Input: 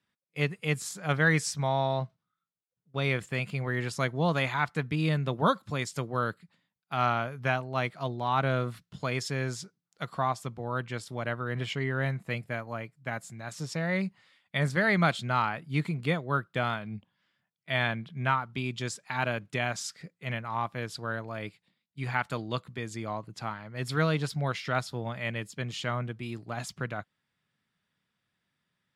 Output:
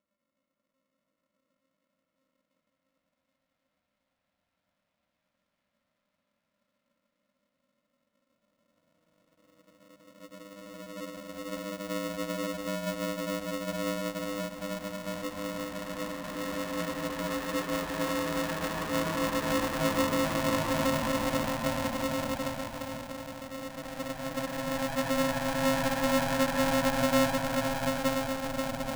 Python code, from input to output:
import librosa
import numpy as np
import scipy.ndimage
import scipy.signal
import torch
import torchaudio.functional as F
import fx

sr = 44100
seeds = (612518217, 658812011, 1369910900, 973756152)

p1 = np.flip(x).copy()
p2 = fx.tilt_shelf(p1, sr, db=9.5, hz=740.0)
p3 = fx.paulstretch(p2, sr, seeds[0], factor=23.0, window_s=0.25, from_s=11.46)
p4 = p3 + fx.echo_diffused(p3, sr, ms=1196, feedback_pct=42, wet_db=-15.5, dry=0)
p5 = p4 * np.sign(np.sin(2.0 * np.pi * 400.0 * np.arange(len(p4)) / sr))
y = p5 * librosa.db_to_amplitude(-4.5)